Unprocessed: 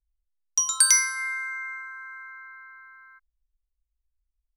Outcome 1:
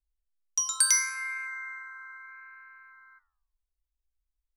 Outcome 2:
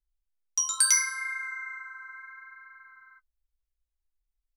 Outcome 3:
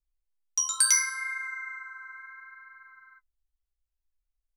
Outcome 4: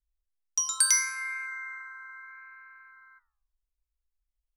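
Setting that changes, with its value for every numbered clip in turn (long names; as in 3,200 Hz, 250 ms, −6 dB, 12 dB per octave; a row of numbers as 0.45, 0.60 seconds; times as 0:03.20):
flanger, regen: +86, −25, +24, −84%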